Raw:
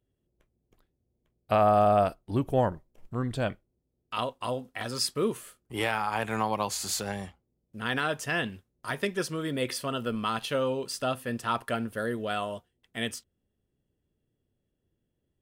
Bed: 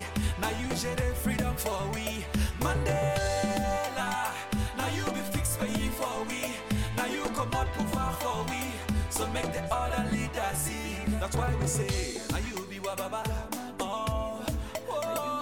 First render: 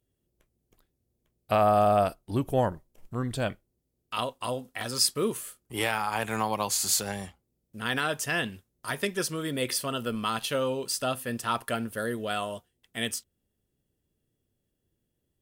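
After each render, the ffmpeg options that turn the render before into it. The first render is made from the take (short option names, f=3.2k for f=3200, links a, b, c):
-af "aemphasis=mode=production:type=cd"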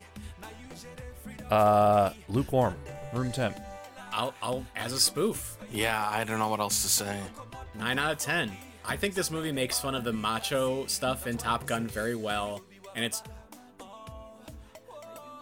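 -filter_complex "[1:a]volume=-14dB[a];[0:a][a]amix=inputs=2:normalize=0"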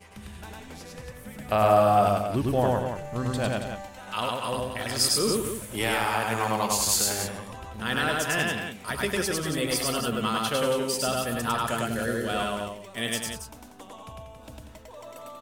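-af "aecho=1:1:102|189.5|277:0.891|0.355|0.398"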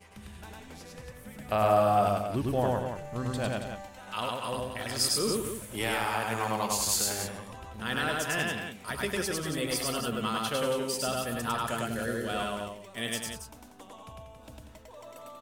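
-af "volume=-4dB"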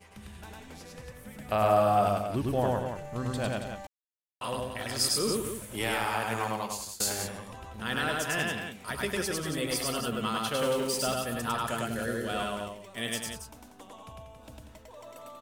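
-filter_complex "[0:a]asettb=1/sr,asplit=3[a][b][c];[a]atrim=end=10.594[d];[b]atrim=start=10.59:end=11.14,asetpts=PTS-STARTPTS,afade=t=in:d=0.004:c=qsin,afade=t=out:st=0.546:d=0.004:c=qsin,aeval=exprs='val(0)+0.5*0.0141*sgn(val(0))':c=same[e];[c]atrim=start=11.136[f];[d][e]acrossfade=d=0.004:c1=hsin:c2=qsin[g];[g][f]acrossfade=d=0.004:c1=qsin:c2=hsin,asplit=4[h][i][j][k];[h]atrim=end=3.87,asetpts=PTS-STARTPTS,afade=t=out:st=3.866:d=0.004:c=hsin[l];[i]atrim=start=3.87:end=4.41,asetpts=PTS-STARTPTS,volume=0[m];[j]atrim=start=4.41:end=7,asetpts=PTS-STARTPTS,afade=t=in:d=0.004:c=hsin,afade=t=out:st=1.99:d=0.6:silence=0.0668344[n];[k]atrim=start=7,asetpts=PTS-STARTPTS,afade=t=in:d=0.004:c=hsin:silence=0.0668344[o];[l][m][n][o]concat=n=4:v=0:a=1"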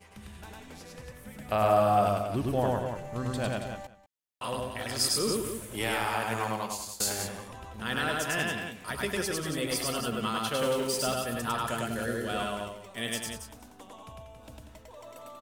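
-filter_complex "[0:a]asplit=2[a][b];[b]adelay=192.4,volume=-16dB,highshelf=f=4k:g=-4.33[c];[a][c]amix=inputs=2:normalize=0"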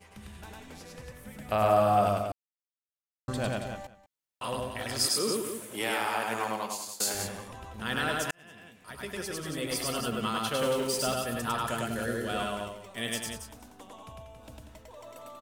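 -filter_complex "[0:a]asettb=1/sr,asplit=3[a][b][c];[a]atrim=end=5.064[d];[b]atrim=start=5.06:end=7.15,asetpts=PTS-STARTPTS,afade=t=in:d=0.004:c=qsin,afade=t=out:st=2.086:d=0.004:c=qsin,highpass=200[e];[c]atrim=start=7.146[f];[d][e]acrossfade=d=0.004:c1=hsin:c2=qsin[g];[g][f]acrossfade=d=0.004:c1=qsin:c2=hsin,asplit=4[h][i][j][k];[h]atrim=end=2.32,asetpts=PTS-STARTPTS,afade=t=out:st=2.316:d=0.004:c=hsin[l];[i]atrim=start=2.32:end=3.28,asetpts=PTS-STARTPTS,volume=0[m];[j]atrim=start=3.28:end=8.31,asetpts=PTS-STARTPTS,afade=t=in:d=0.004:c=hsin,afade=t=out:st=5.026:d=0.004:c=hsin[n];[k]atrim=start=8.31,asetpts=PTS-STARTPTS,afade=t=in:d=1.7[o];[l][m][n][o]concat=n=4:v=0:a=1"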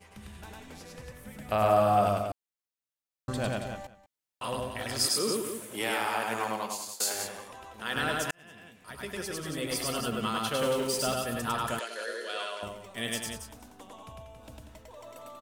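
-filter_complex "[0:a]asettb=1/sr,asplit=3[a][b][c];[a]atrim=end=6.954[d];[b]atrim=start=6.95:end=7.96,asetpts=PTS-STARTPTS,afade=t=in:d=0.004:c=qsin,afade=t=out:st=1.006:d=0.004:c=qsin,bass=f=250:g=-13,treble=f=4k:g=0[e];[c]atrim=start=7.956[f];[d][e]acrossfade=d=0.004:c1=hsin:c2=qsin[g];[g][f]acrossfade=d=0.004:c1=qsin:c2=hsin,asettb=1/sr,asplit=3[h][i][j];[h]atrim=end=11.794[k];[i]atrim=start=11.79:end=12.63,asetpts=PTS-STARTPTS,afade=t=in:d=0.004:c=qsin,afade=t=out:st=0.836:d=0.004:c=qsin,highpass=f=460:w=0.5412,highpass=f=460:w=1.3066,equalizer=f=760:t=q:w=4:g=-9,equalizer=f=1.3k:t=q:w=4:g=-3,equalizer=f=4.3k:t=q:w=4:g=8,equalizer=f=8k:t=q:w=4:g=-5,lowpass=f=9.8k:w=0.5412,lowpass=f=9.8k:w=1.3066[l];[j]atrim=start=12.626[m];[k][l]acrossfade=d=0.004:c1=hsin:c2=qsin[n];[n][m]acrossfade=d=0.004:c1=qsin:c2=hsin"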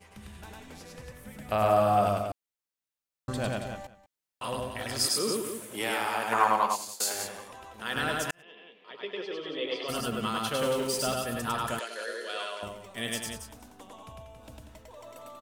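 -filter_complex "[0:a]asettb=1/sr,asplit=3[a][b][c];[a]atrim=end=6.324[d];[b]atrim=start=6.32:end=6.76,asetpts=PTS-STARTPTS,afade=t=in:d=0.004:c=qsin,afade=t=out:st=0.436:d=0.004:c=qsin,equalizer=f=1.1k:w=0.93:g=12[e];[c]atrim=start=6.756[f];[d][e]acrossfade=d=0.004:c1=hsin:c2=qsin[g];[g][f]acrossfade=d=0.004:c1=qsin:c2=hsin,asplit=3[h][i][j];[h]afade=t=out:st=8.41:d=0.02[k];[i]highpass=f=240:w=0.5412,highpass=f=240:w=1.3066,equalizer=f=240:t=q:w=4:g=-9,equalizer=f=450:t=q:w=4:g=8,equalizer=f=710:t=q:w=4:g=-4,equalizer=f=1.5k:t=q:w=4:g=-9,equalizer=f=3.2k:t=q:w=4:g=8,lowpass=f=3.6k:w=0.5412,lowpass=f=3.6k:w=1.3066,afade=t=in:st=8.41:d=0.02,afade=t=out:st=9.88:d=0.02[l];[j]afade=t=in:st=9.88:d=0.02[m];[k][l][m]amix=inputs=3:normalize=0"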